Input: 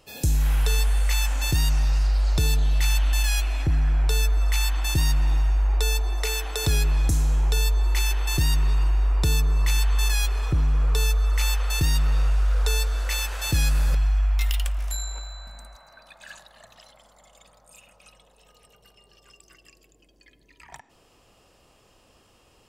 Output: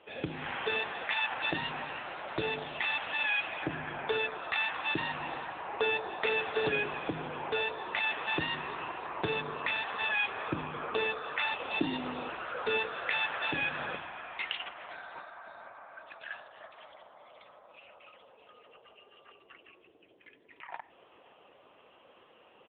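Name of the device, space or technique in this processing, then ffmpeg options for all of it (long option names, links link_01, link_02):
satellite phone: -filter_complex "[0:a]asettb=1/sr,asplit=3[link_01][link_02][link_03];[link_01]atrim=end=11.534[link_04];[link_02]atrim=start=11.53:end=12.29,asetpts=PTS-STARTPTS,afade=type=in:duration=0.004:curve=qsin,afade=type=out:start_time=0.756:duration=0.004:curve=qsin,equalizer=frequency=100:width_type=o:width=0.67:gain=-11,equalizer=frequency=250:width_type=o:width=0.67:gain=12,equalizer=frequency=1600:width_type=o:width=0.67:gain=-9,equalizer=frequency=10000:width_type=o:width=0.67:gain=12[link_05];[link_03]atrim=start=12.286[link_06];[link_04][link_05]acrossfade=duration=0.004:curve1=hsin:curve2=qsin[link_07];[link_07][link_06]acrossfade=duration=0.004:curve1=qsin:curve2=hsin,highpass=350,lowpass=3200,aecho=1:1:517:0.0668,volume=6dB" -ar 8000 -c:a libopencore_amrnb -b:a 6700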